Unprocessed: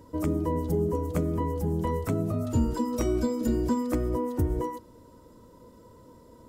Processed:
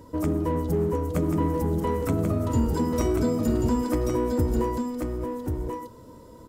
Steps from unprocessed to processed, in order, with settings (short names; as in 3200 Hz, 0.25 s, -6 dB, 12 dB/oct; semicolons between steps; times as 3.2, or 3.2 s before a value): in parallel at -5 dB: hard clip -31 dBFS, distortion -6 dB; on the sum: echo 1.086 s -4.5 dB